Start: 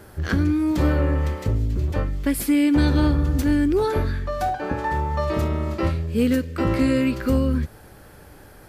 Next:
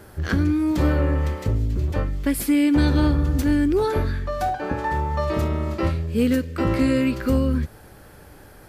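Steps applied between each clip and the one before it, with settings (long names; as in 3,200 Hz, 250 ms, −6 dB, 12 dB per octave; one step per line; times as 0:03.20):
no processing that can be heard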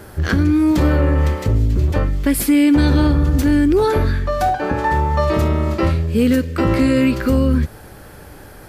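brickwall limiter −14.5 dBFS, peak gain reduction 4 dB
level +7 dB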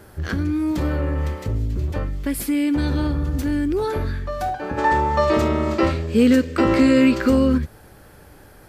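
gain on a spectral selection 0:04.78–0:07.58, 200–8,600 Hz +8 dB
level −7.5 dB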